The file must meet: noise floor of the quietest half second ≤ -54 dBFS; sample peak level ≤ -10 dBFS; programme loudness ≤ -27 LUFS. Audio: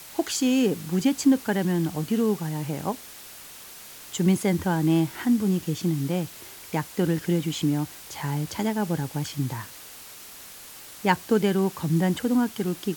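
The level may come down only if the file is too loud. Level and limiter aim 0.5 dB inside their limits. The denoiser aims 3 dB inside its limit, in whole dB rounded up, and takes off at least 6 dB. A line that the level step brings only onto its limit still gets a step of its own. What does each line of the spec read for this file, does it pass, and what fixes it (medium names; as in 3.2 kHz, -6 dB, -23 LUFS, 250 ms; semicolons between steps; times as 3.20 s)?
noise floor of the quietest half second -44 dBFS: fail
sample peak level -5.0 dBFS: fail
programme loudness -25.5 LUFS: fail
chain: noise reduction 11 dB, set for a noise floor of -44 dBFS; trim -2 dB; peak limiter -10.5 dBFS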